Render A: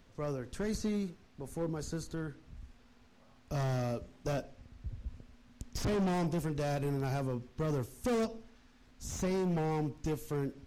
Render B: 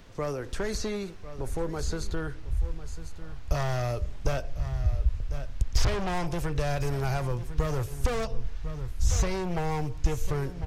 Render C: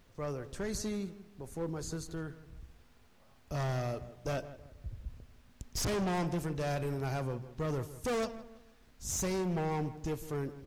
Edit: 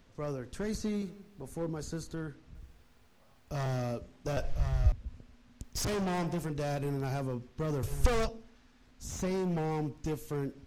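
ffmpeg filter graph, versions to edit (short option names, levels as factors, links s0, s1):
-filter_complex "[2:a]asplit=3[s0][s1][s2];[1:a]asplit=2[s3][s4];[0:a]asplit=6[s5][s6][s7][s8][s9][s10];[s5]atrim=end=1.022[s11];[s0]atrim=start=1.018:end=1.422[s12];[s6]atrim=start=1.418:end=2.552[s13];[s1]atrim=start=2.548:end=3.662[s14];[s7]atrim=start=3.658:end=4.372[s15];[s3]atrim=start=4.368:end=4.922[s16];[s8]atrim=start=4.918:end=5.642[s17];[s2]atrim=start=5.638:end=6.502[s18];[s9]atrim=start=6.498:end=7.832[s19];[s4]atrim=start=7.828:end=8.292[s20];[s10]atrim=start=8.288[s21];[s11][s12]acrossfade=d=0.004:c1=hsin:c2=hsin[s22];[s22][s13]acrossfade=d=0.004:c1=hsin:c2=hsin[s23];[s23][s14]acrossfade=d=0.004:c1=hsin:c2=hsin[s24];[s24][s15]acrossfade=d=0.004:c1=hsin:c2=hsin[s25];[s25][s16]acrossfade=d=0.004:c1=hsin:c2=hsin[s26];[s26][s17]acrossfade=d=0.004:c1=hsin:c2=hsin[s27];[s27][s18]acrossfade=d=0.004:c1=hsin:c2=hsin[s28];[s28][s19]acrossfade=d=0.004:c1=hsin:c2=hsin[s29];[s29][s20]acrossfade=d=0.004:c1=hsin:c2=hsin[s30];[s30][s21]acrossfade=d=0.004:c1=hsin:c2=hsin"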